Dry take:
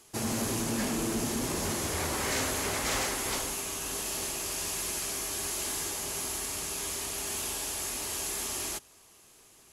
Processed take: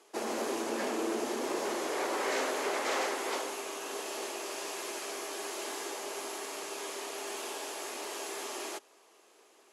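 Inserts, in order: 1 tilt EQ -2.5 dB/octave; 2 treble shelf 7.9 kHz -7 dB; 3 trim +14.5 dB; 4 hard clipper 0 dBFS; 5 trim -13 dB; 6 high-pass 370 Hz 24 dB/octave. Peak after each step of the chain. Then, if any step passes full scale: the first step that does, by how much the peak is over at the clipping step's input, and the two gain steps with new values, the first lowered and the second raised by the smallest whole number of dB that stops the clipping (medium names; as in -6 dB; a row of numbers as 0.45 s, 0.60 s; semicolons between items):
-17.0 dBFS, -17.0 dBFS, -2.5 dBFS, -2.5 dBFS, -15.5 dBFS, -20.5 dBFS; nothing clips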